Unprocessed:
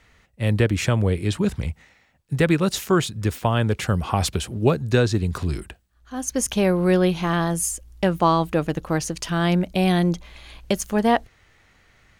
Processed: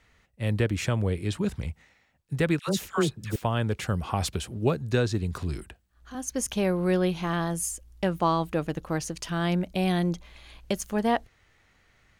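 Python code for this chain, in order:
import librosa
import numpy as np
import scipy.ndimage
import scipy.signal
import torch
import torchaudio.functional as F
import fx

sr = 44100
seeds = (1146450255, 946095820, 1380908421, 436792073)

y = fx.dispersion(x, sr, late='lows', ms=84.0, hz=1000.0, at=(2.59, 3.36))
y = fx.band_squash(y, sr, depth_pct=70, at=(5.6, 6.15))
y = F.gain(torch.from_numpy(y), -6.0).numpy()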